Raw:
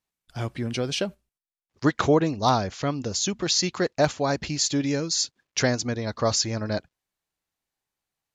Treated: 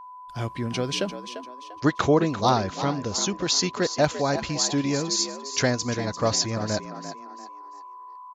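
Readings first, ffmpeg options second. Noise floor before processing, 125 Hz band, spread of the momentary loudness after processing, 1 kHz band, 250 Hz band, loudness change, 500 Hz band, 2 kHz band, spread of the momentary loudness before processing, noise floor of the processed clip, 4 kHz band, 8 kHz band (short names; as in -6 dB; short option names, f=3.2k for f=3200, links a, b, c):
under -85 dBFS, 0.0 dB, 19 LU, +1.5 dB, +0.5 dB, +0.5 dB, +0.5 dB, +0.5 dB, 9 LU, -43 dBFS, +0.5 dB, +0.5 dB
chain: -filter_complex "[0:a]aeval=exprs='val(0)+0.01*sin(2*PI*1000*n/s)':c=same,asplit=5[a][b][c][d][e];[b]adelay=345,afreqshift=63,volume=-11dB[f];[c]adelay=690,afreqshift=126,volume=-20.1dB[g];[d]adelay=1035,afreqshift=189,volume=-29.2dB[h];[e]adelay=1380,afreqshift=252,volume=-38.4dB[i];[a][f][g][h][i]amix=inputs=5:normalize=0"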